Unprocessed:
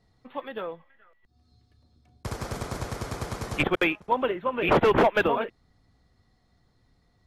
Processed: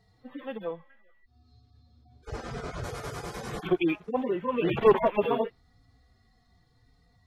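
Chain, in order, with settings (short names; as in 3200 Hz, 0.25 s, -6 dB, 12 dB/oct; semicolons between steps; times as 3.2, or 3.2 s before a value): median-filter separation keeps harmonic; 0.64–2.84 air absorption 79 m; gain +3.5 dB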